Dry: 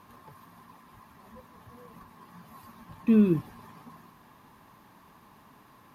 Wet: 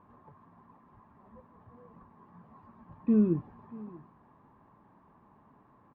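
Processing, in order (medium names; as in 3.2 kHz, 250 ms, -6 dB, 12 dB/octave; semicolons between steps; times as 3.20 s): low-pass 1.1 kHz 12 dB/octave; delay 635 ms -20.5 dB; trim -3.5 dB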